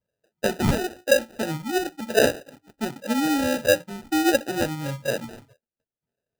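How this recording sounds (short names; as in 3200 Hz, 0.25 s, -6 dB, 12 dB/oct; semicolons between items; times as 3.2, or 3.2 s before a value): phasing stages 8, 0.75 Hz, lowest notch 300–1100 Hz; aliases and images of a low sample rate 1100 Hz, jitter 0%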